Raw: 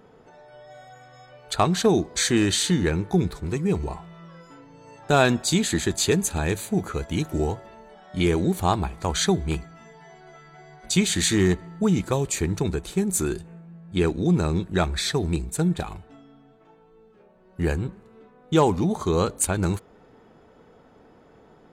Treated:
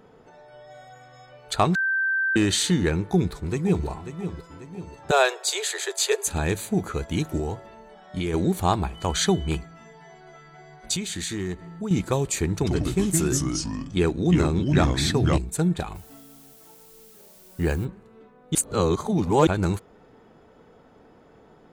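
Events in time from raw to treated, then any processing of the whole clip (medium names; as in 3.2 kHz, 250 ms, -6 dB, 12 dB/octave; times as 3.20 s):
1.75–2.36 s: bleep 1.56 kHz -20.5 dBFS
3.03–3.86 s: echo throw 540 ms, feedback 50%, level -10.5 dB
5.11–6.27 s: steep high-pass 390 Hz 96 dB/octave
7.37–8.34 s: compression, threshold -23 dBFS
8.94–9.56 s: whistle 3 kHz -44 dBFS
10.96–11.91 s: compression 2:1, threshold -34 dBFS
12.53–15.38 s: ever faster or slower copies 83 ms, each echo -3 st, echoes 2
15.94–17.84 s: added noise blue -52 dBFS
18.55–19.47 s: reverse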